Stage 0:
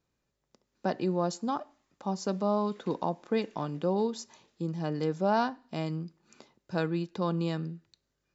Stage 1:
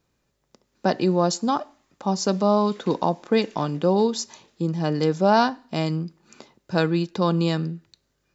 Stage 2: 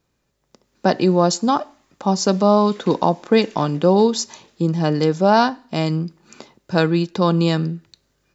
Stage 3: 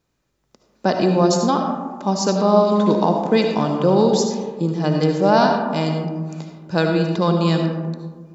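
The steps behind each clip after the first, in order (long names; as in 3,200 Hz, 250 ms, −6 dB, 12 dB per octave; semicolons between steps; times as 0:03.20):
dynamic equaliser 5,300 Hz, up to +5 dB, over −53 dBFS, Q 0.8; level +8.5 dB
automatic gain control gain up to 5 dB; level +1 dB
comb and all-pass reverb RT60 1.6 s, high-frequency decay 0.3×, pre-delay 35 ms, DRR 3 dB; level −2 dB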